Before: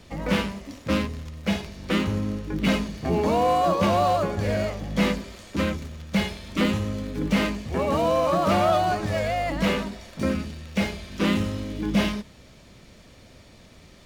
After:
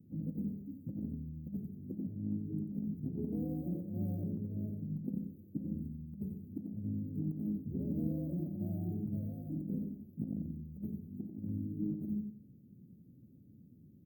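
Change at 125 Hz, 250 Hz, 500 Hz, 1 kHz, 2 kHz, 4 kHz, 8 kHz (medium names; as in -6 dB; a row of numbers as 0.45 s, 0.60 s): -10.0 dB, -11.0 dB, -25.5 dB, under -40 dB, under -40 dB, under -40 dB, under -40 dB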